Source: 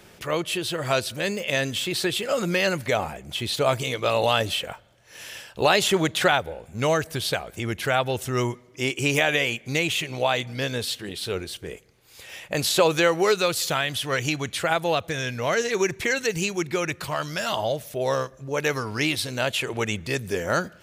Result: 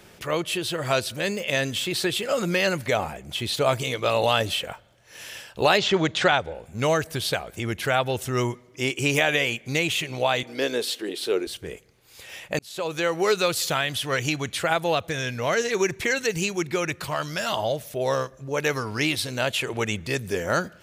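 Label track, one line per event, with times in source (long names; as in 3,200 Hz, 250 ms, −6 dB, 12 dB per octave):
5.770000	6.530000	low-pass filter 5,200 Hz → 8,700 Hz 24 dB per octave
10.430000	11.470000	high-pass with resonance 340 Hz, resonance Q 2.4
12.590000	13.380000	fade in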